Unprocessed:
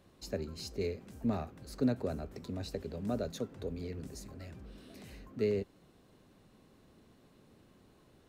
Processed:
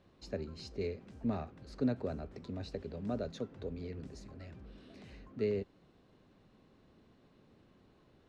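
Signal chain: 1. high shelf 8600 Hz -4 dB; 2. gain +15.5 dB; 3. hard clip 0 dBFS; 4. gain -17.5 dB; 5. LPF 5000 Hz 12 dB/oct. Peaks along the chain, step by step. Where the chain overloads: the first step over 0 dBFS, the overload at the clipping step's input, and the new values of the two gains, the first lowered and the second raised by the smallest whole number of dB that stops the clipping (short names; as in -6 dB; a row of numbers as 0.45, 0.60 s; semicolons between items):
-19.0, -3.5, -3.5, -21.0, -21.0 dBFS; no overload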